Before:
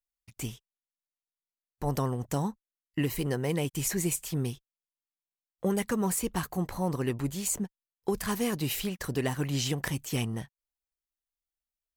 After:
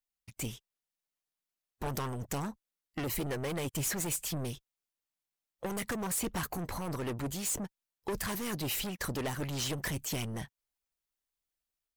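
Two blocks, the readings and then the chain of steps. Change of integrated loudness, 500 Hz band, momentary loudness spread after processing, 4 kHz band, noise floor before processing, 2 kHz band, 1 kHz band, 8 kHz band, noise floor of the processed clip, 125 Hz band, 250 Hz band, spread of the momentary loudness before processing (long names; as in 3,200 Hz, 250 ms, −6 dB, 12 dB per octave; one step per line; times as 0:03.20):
−4.0 dB, −5.5 dB, 9 LU, −1.5 dB, below −85 dBFS, −1.5 dB, −3.0 dB, −2.0 dB, below −85 dBFS, −6.0 dB, −6.5 dB, 9 LU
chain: automatic gain control gain up to 3.5 dB
soft clipping −31 dBFS, distortion −6 dB
harmonic and percussive parts rebalanced harmonic −6 dB
level +2 dB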